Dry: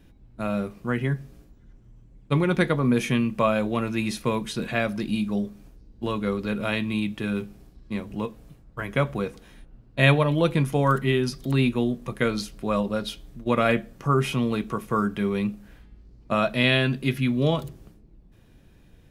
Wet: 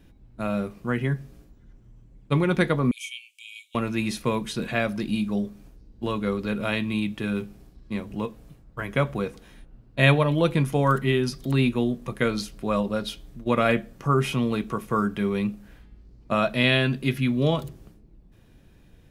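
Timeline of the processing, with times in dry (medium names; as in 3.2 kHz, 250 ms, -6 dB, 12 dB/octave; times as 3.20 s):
2.91–3.75 s: rippled Chebyshev high-pass 2.2 kHz, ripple 9 dB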